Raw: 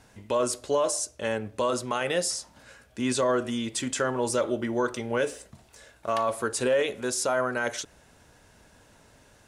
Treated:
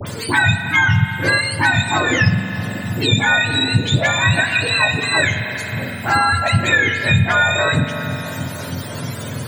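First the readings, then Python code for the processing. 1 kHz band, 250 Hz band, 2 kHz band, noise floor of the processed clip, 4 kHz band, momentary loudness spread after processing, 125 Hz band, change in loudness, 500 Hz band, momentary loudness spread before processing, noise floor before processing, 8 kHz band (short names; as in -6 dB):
+11.0 dB, +9.0 dB, +20.5 dB, -28 dBFS, +16.5 dB, 11 LU, +23.5 dB, +11.5 dB, +1.0 dB, 7 LU, -58 dBFS, +2.5 dB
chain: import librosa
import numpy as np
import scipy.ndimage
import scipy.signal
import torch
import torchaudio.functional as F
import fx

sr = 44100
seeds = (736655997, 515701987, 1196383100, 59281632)

p1 = fx.octave_mirror(x, sr, pivot_hz=960.0)
p2 = fx.tilt_shelf(p1, sr, db=-4.5, hz=1200.0)
p3 = fx.rider(p2, sr, range_db=10, speed_s=0.5)
p4 = p2 + (p3 * 10.0 ** (2.0 / 20.0))
p5 = fx.high_shelf(p4, sr, hz=9200.0, db=-4.0)
p6 = fx.dispersion(p5, sr, late='highs', ms=69.0, hz=1800.0)
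p7 = p6 + fx.echo_filtered(p6, sr, ms=317, feedback_pct=69, hz=1000.0, wet_db=-18.0, dry=0)
p8 = fx.rev_spring(p7, sr, rt60_s=2.0, pass_ms=(42,), chirp_ms=20, drr_db=7.5)
p9 = fx.band_squash(p8, sr, depth_pct=70)
y = p9 * 10.0 ** (4.5 / 20.0)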